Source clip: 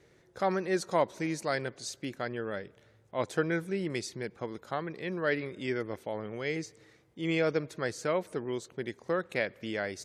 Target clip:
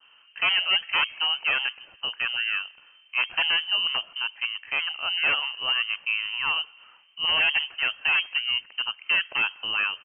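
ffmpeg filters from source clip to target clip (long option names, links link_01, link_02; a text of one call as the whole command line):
ffmpeg -i in.wav -af "adynamicequalizer=threshold=0.00891:dfrequency=720:dqfactor=0.94:tfrequency=720:tqfactor=0.94:attack=5:release=100:ratio=0.375:range=2:mode=boostabove:tftype=bell,acontrast=59,aresample=11025,aeval=exprs='0.15*(abs(mod(val(0)/0.15+3,4)-2)-1)':channel_layout=same,aresample=44100,lowpass=frequency=2700:width_type=q:width=0.5098,lowpass=frequency=2700:width_type=q:width=0.6013,lowpass=frequency=2700:width_type=q:width=0.9,lowpass=frequency=2700:width_type=q:width=2.563,afreqshift=-3200" out.wav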